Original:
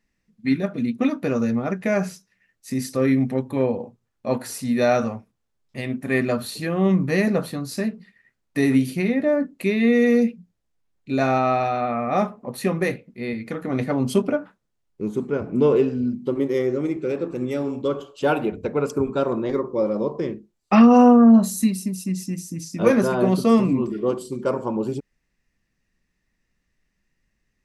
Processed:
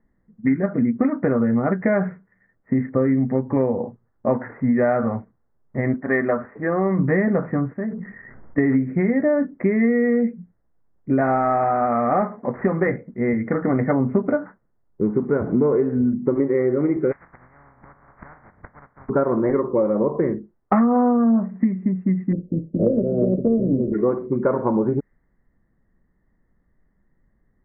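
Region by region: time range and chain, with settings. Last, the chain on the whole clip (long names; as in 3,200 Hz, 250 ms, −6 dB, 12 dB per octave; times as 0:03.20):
0:02.89–0:03.48: log-companded quantiser 8 bits + head-to-tape spacing loss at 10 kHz 23 dB
0:05.94–0:06.99: moving average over 7 samples + parametric band 110 Hz −12.5 dB 2.6 octaves
0:07.73–0:08.58: transistor ladder low-pass 5,500 Hz, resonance 75% + envelope flattener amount 70%
0:11.21–0:12.87: variable-slope delta modulation 32 kbit/s + low-shelf EQ 110 Hz −8.5 dB
0:17.11–0:19.08: compressing power law on the bin magnitudes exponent 0.21 + parametric band 390 Hz −13 dB 1.6 octaves + gate with flip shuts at −20 dBFS, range −24 dB
0:22.31–0:23.93: compressing power law on the bin magnitudes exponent 0.62 + elliptic low-pass filter 580 Hz
whole clip: Butterworth low-pass 2,100 Hz 96 dB per octave; low-pass that shuts in the quiet parts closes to 1,100 Hz, open at −15 dBFS; downward compressor 6 to 1, threshold −25 dBFS; level +9 dB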